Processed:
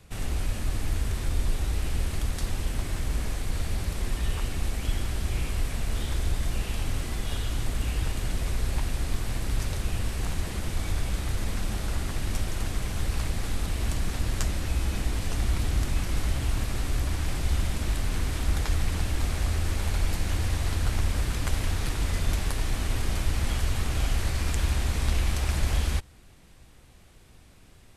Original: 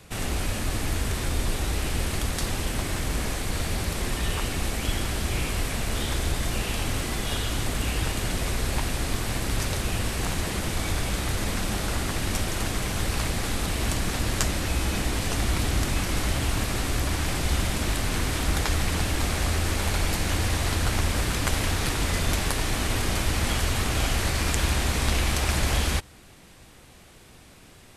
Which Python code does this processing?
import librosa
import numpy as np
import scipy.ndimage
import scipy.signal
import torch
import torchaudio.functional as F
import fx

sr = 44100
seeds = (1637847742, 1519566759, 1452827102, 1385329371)

y = fx.low_shelf(x, sr, hz=97.0, db=11.0)
y = y * 10.0 ** (-7.5 / 20.0)